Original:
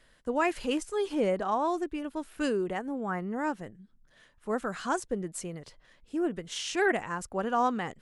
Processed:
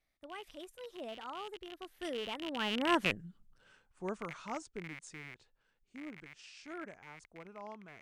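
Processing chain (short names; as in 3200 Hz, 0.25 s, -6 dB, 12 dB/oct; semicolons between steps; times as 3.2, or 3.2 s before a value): rattling part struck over -47 dBFS, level -22 dBFS; Doppler pass-by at 3.11, 55 m/s, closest 11 m; gain +4.5 dB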